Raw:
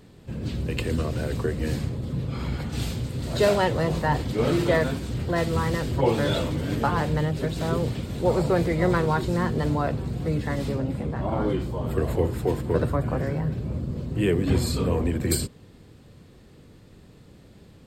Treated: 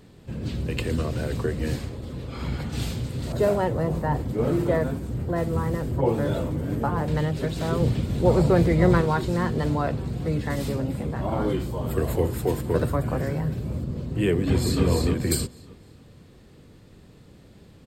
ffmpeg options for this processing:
-filter_complex "[0:a]asettb=1/sr,asplit=3[a][b][c];[a]atrim=end=1.764[d];[b]atrim=start=1.76:end=2.42,asetpts=PTS-STARTPTS,afade=t=in:d=0.004:c=qsin,afade=t=out:st=0.656:d=0.004:c=qsin,equalizer=f=150:w=1.3:g=-9.5[e];[c]atrim=start=2.416[f];[d][e]acrossfade=d=0.004:c1=hsin:c2=qsin[g];[g][f]acrossfade=d=0.004:c1=qsin:c2=hsin,asettb=1/sr,asplit=3[h][i][j];[h]atrim=end=3.324[k];[i]atrim=start=3.32:end=7.08,asetpts=PTS-STARTPTS,afade=t=in:d=0.004:c=qsin,afade=t=out:st=3.756:d=0.004:c=qsin,equalizer=f=3.8k:t=o:w=2.4:g=-13[l];[j]atrim=start=7.076[m];[k][l]acrossfade=d=0.004:c1=hsin:c2=qsin[n];[n][m]acrossfade=d=0.004:c1=qsin:c2=hsin,asettb=1/sr,asplit=3[o][p][q];[o]atrim=end=7.804[r];[p]atrim=start=7.8:end=9.01,asetpts=PTS-STARTPTS,afade=t=in:d=0.004:c=qsin,afade=t=out:st=1.206:d=0.004:c=qsin,lowshelf=f=330:g=6.5[s];[q]atrim=start=9.006[t];[r][s]acrossfade=d=0.004:c1=hsin:c2=qsin[u];[u][t]acrossfade=d=0.004:c1=qsin:c2=hsin,asettb=1/sr,asplit=3[v][w][x];[v]atrim=end=10.504[y];[w]atrim=start=10.5:end=13.84,asetpts=PTS-STARTPTS,afade=t=in:d=0.004:c=qsin,afade=t=out:st=3.336:d=0.004:c=qsin,highshelf=f=7.6k:g=11.5[z];[x]atrim=start=13.836[aa];[y][z]acrossfade=d=0.004:c1=hsin:c2=qsin[ab];[ab][aa]acrossfade=d=0.004:c1=qsin:c2=hsin,asplit=2[ac][ad];[ad]afade=t=in:st=14.35:d=0.01,afade=t=out:st=14.84:d=0.01,aecho=0:1:300|600|900|1200:0.749894|0.224968|0.0674905|0.0202471[ae];[ac][ae]amix=inputs=2:normalize=0"

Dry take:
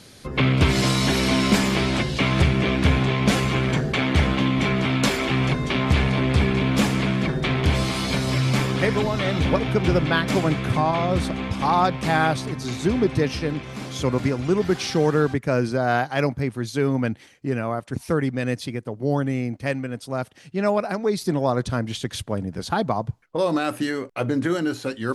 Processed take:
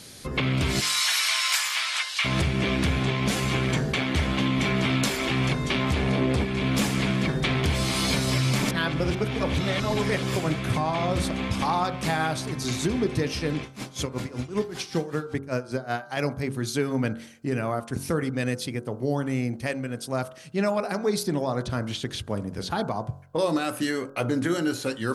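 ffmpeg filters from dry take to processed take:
-filter_complex "[0:a]asplit=3[a][b][c];[a]afade=t=out:st=0.79:d=0.02[d];[b]highpass=f=1.1k:w=0.5412,highpass=f=1.1k:w=1.3066,afade=t=in:st=0.79:d=0.02,afade=t=out:st=2.24:d=0.02[e];[c]afade=t=in:st=2.24:d=0.02[f];[d][e][f]amix=inputs=3:normalize=0,asettb=1/sr,asplit=3[g][h][i];[g]atrim=end=5.944[j];[h]atrim=start=5.94:end=6.45,asetpts=PTS-STARTPTS,afade=t=in:d=0.004:c=qsin,afade=t=out:st=0.506:d=0.004:c=qsin,equalizer=f=410:t=o:w=2.4:g=8[k];[i]atrim=start=6.446[l];[j][k]acrossfade=d=0.004:c1=hsin:c2=qsin[m];[m][l]acrossfade=d=0.004:c1=qsin:c2=hsin,asettb=1/sr,asplit=3[n][o][p];[n]atrim=end=13.634[q];[o]atrim=start=13.63:end=16.17,asetpts=PTS-STARTPTS,afade=t=in:d=0.004:c=qsin,afade=t=out:st=2.536:d=0.004:c=qsin,aeval=exprs='val(0)*pow(10,-20*(0.5-0.5*cos(2*PI*5.2*n/s))/20)':c=same[r];[p]atrim=start=16.166[s];[q][r]acrossfade=d=0.004:c1=hsin:c2=qsin[t];[t][s]acrossfade=d=0.004:c1=qsin:c2=hsin,asettb=1/sr,asplit=3[u][v][w];[u]atrim=end=21.234[x];[v]atrim=start=21.23:end=22.71,asetpts=PTS-STARTPTS,afade=t=in:d=0.004:c=qsin,afade=t=out:st=1.476:d=0.004:c=qsin,acrossover=split=4900[y][z];[z]acompressor=threshold=-48dB:ratio=4:attack=1:release=60[aa];[y][aa]amix=inputs=2:normalize=0[ab];[w]atrim=start=22.706[ac];[x][ab]acrossfade=d=0.004:c1=hsin:c2=qsin[ad];[ad][ac]acrossfade=d=0.004:c1=qsin:c2=hsin,asplit=3[ae][af][ag];[ae]atrim=end=8.632[ah];[af]atrim=start=8.628:end=10.362,asetpts=PTS-STARTPTS,areverse[ai];[ag]atrim=start=10.358[aj];[ah][ai]acrossfade=d=0.004:c1=hsin:c2=hsin[ak];[ak][aj]acrossfade=d=0.004:c1=hsin:c2=hsin,alimiter=limit=-14.5dB:level=0:latency=1:release=393,highshelf=f=5.2k:g=8,bandreject=f=45.88:t=h:w=4,bandreject=f=91.76:t=h:w=4,bandreject=f=137.64:t=h:w=4,bandreject=f=183.52:t=h:w=4,bandreject=f=229.4:t=h:w=4,bandreject=f=275.28:t=h:w=4,bandreject=f=321.16:t=h:w=4,bandreject=f=367.04:t=h:w=4,bandreject=f=412.92:t=h:w=4,bandreject=f=458.8:t=h:w=4,bandreject=f=504.68:t=h:w=4,bandreject=f=550.56:t=h:w=4,bandreject=f=596.44:t=h:w=4,bandreject=f=642.32:t=h:w=4,bandreject=f=688.2:t=h:w=4,bandreject=f=734.08:t=h:w=4,bandreject=f=779.96:t=h:w=4,bandreject=f=825.84:t=h:w=4,bandreject=f=871.72:t=h:w=4,bandreject=f=917.6:t=h:w=4,bandreject=f=963.48:t=h:w=4,bandreject=f=1.00936k:t=h:w=4,bandreject=f=1.05524k:t=h:w=4,bandreject=f=1.10112k:t=h:w=4,bandreject=f=1.147k:t=h:w=4,bandreject=f=1.19288k:t=h:w=4,bandreject=f=1.23876k:t=h:w=4,bandreject=f=1.28464k:t=h:w=4,bandreject=f=1.33052k:t=h:w=4,bandreject=f=1.3764k:t=h:w=4,bandreject=f=1.42228k:t=h:w=4,bandreject=f=1.46816k:t=h:w=4,bandreject=f=1.51404k:t=h:w=4,bandreject=f=1.55992k:t=h:w=4,bandreject=f=1.6058k:t=h:w=4"

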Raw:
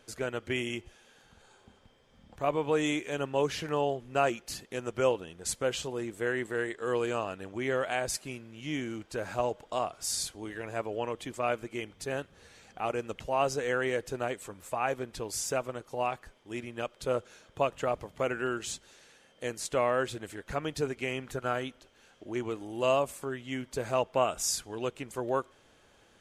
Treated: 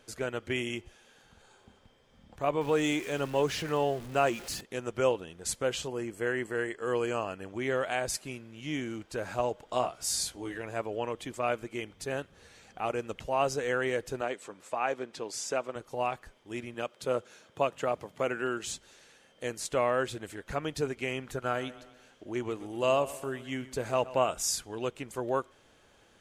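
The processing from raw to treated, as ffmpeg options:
-filter_complex "[0:a]asettb=1/sr,asplit=3[a][b][c];[a]atrim=end=2.614[d];[b]atrim=start=2.61:end=4.61,asetpts=PTS-STARTPTS,afade=t=in:d=0.004:c=qsin,afade=t=out:st=1.996:d=0.004:c=qsin,aeval=exprs='val(0)+0.5*0.00891*sgn(val(0))':c=same[e];[c]atrim=start=4.606[f];[d][e]acrossfade=d=0.004:c1=hsin:c2=qsin[g];[g][f]acrossfade=d=0.004:c1=qsin:c2=hsin,asettb=1/sr,asplit=3[h][i][j];[h]atrim=end=5.884[k];[i]atrim=start=5.88:end=7.49,asetpts=PTS-STARTPTS,afade=t=in:d=0.004:c=qsin,afade=t=out:st=1.606:d=0.004:c=qsin,asuperstop=centerf=3700:order=12:qfactor=5.6[l];[j]atrim=start=7.486[m];[k][l]acrossfade=d=0.004:c1=hsin:c2=qsin[n];[n][m]acrossfade=d=0.004:c1=qsin:c2=hsin,asettb=1/sr,asplit=3[o][p][q];[o]atrim=end=9.674[r];[p]atrim=start=9.67:end=10.58,asetpts=PTS-STARTPTS,afade=t=in:d=0.004:c=qsin,afade=t=out:st=0.906:d=0.004:c=qsin,asplit=2[s][t];[t]adelay=16,volume=-4dB[u];[s][u]amix=inputs=2:normalize=0,atrim=end_sample=40131[v];[q]atrim=start=10.576[w];[r][v]acrossfade=d=0.004:c1=hsin:c2=qsin[x];[x][w]acrossfade=d=0.004:c1=qsin:c2=hsin,asettb=1/sr,asplit=3[y][z][aa];[y]atrim=end=14.214[ab];[z]atrim=start=14.21:end=15.76,asetpts=PTS-STARTPTS,afade=t=in:d=0.004:c=qsin,afade=t=out:st=1.546:d=0.004:c=qsin,highpass=220,lowpass=7.2k[ac];[aa]atrim=start=15.756[ad];[ab][ac]acrossfade=d=0.004:c1=hsin:c2=qsin[ae];[ae][ad]acrossfade=d=0.004:c1=qsin:c2=hsin,asettb=1/sr,asplit=3[af][ag][ah];[af]atrim=end=16.744[ai];[ag]atrim=start=16.74:end=18.64,asetpts=PTS-STARTPTS,afade=t=in:d=0.004:c=qsin,afade=t=out:st=1.896:d=0.004:c=qsin,highpass=120[aj];[ah]atrim=start=18.636[ak];[ai][aj]acrossfade=d=0.004:c1=hsin:c2=qsin[al];[al][ak]acrossfade=d=0.004:c1=qsin:c2=hsin,asettb=1/sr,asplit=3[am][an][ao];[am]atrim=end=21.434[ap];[an]atrim=start=21.43:end=24.32,asetpts=PTS-STARTPTS,afade=t=in:d=0.004:c=qsin,afade=t=out:st=2.886:d=0.004:c=qsin,aecho=1:1:125|250|375|500:0.141|0.0706|0.0353|0.0177,atrim=end_sample=127449[aq];[ao]atrim=start=24.316[ar];[ap][aq]acrossfade=d=0.004:c1=hsin:c2=qsin[as];[as][ar]acrossfade=d=0.004:c1=qsin:c2=hsin"

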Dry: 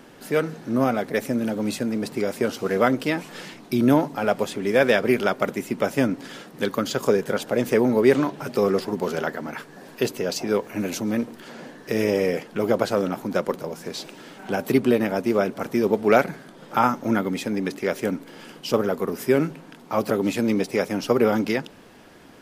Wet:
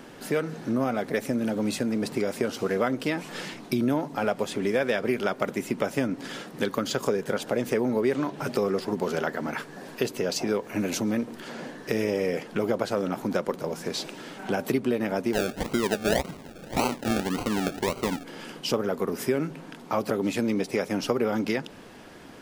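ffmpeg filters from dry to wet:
-filter_complex "[0:a]asettb=1/sr,asplit=3[a][b][c];[a]atrim=end=15.334[d];[b]atrim=start=15.33:end=18.24,asetpts=PTS-STARTPTS,afade=t=in:d=0.004:c=qsin,afade=t=out:st=2.906:d=0.004:c=qsin,acrusher=samples=35:mix=1:aa=0.000001:lfo=1:lforange=21:lforate=1.8[e];[c]atrim=start=18.236[f];[d][e]acrossfade=d=0.004:c1=hsin:c2=qsin[g];[g][f]acrossfade=d=0.004:c1=qsin:c2=hsin,equalizer=f=13k:w=2.3:g=-4,acompressor=threshold=-26dB:ratio=3,volume=2dB"

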